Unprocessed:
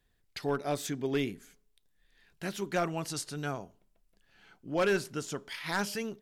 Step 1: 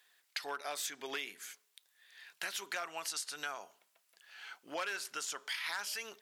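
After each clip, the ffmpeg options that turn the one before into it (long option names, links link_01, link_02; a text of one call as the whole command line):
ffmpeg -i in.wav -filter_complex "[0:a]asplit=2[link_01][link_02];[link_02]alimiter=level_in=6dB:limit=-24dB:level=0:latency=1,volume=-6dB,volume=-3dB[link_03];[link_01][link_03]amix=inputs=2:normalize=0,highpass=1100,acompressor=threshold=-45dB:ratio=4,volume=7dB" out.wav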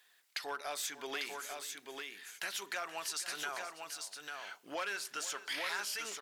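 ffmpeg -i in.wav -filter_complex "[0:a]asplit=2[link_01][link_02];[link_02]asoftclip=type=tanh:threshold=-37.5dB,volume=-3.5dB[link_03];[link_01][link_03]amix=inputs=2:normalize=0,aecho=1:1:477|846:0.168|0.562,volume=-3dB" out.wav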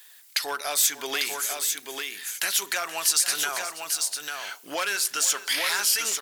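ffmpeg -i in.wav -af "crystalizer=i=2.5:c=0,volume=8.5dB" out.wav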